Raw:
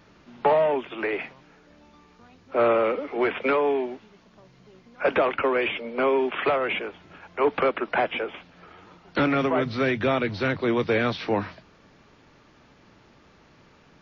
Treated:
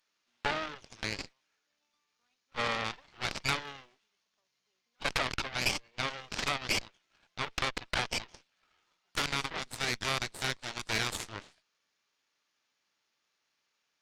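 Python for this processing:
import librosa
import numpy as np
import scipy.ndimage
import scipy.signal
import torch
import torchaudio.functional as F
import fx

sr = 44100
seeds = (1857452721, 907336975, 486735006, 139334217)

y = np.diff(x, prepend=0.0)
y = fx.cheby_harmonics(y, sr, harmonics=(4, 5, 7), levels_db=(-7, -35, -15), full_scale_db=-26.0)
y = fx.overload_stage(y, sr, gain_db=34.5, at=(3.65, 5.05))
y = y * 10.0 ** (6.0 / 20.0)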